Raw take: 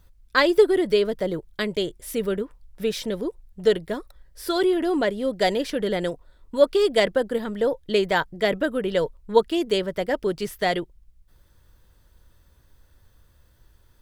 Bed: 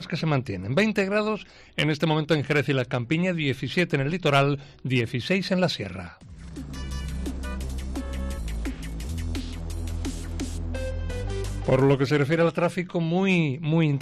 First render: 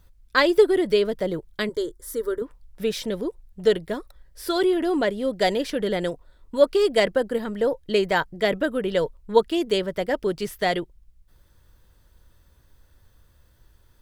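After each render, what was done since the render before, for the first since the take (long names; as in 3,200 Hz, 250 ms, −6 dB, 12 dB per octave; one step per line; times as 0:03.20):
0:01.69–0:02.42: phaser with its sweep stopped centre 700 Hz, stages 6
0:06.63–0:08.31: notch filter 3,500 Hz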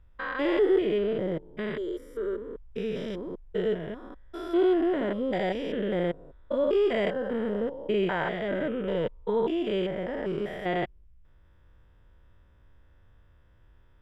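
spectrum averaged block by block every 200 ms
Savitzky-Golay smoothing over 25 samples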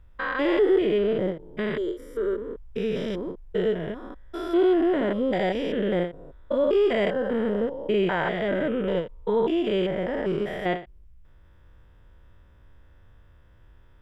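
in parallel at −2.5 dB: brickwall limiter −23 dBFS, peak gain reduction 8.5 dB
on the sum: every ending faded ahead of time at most 180 dB per second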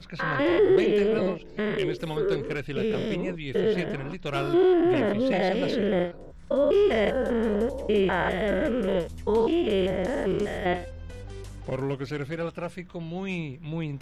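mix in bed −10 dB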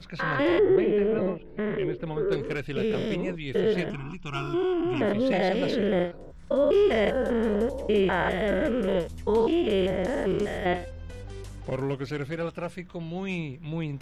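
0:00.59–0:02.32: high-frequency loss of the air 490 metres
0:03.90–0:05.01: phaser with its sweep stopped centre 2,700 Hz, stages 8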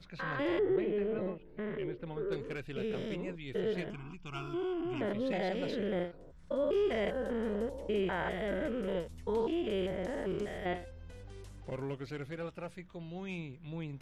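level −9.5 dB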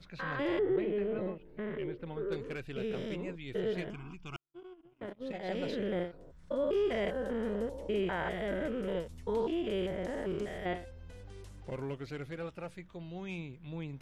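0:04.36–0:05.49: noise gate −33 dBFS, range −60 dB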